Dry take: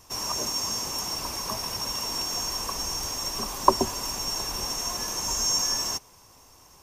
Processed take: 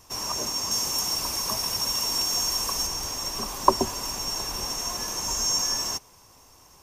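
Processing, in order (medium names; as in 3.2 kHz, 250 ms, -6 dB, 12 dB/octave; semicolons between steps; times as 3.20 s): 0.71–2.87 s: treble shelf 3.9 kHz +6.5 dB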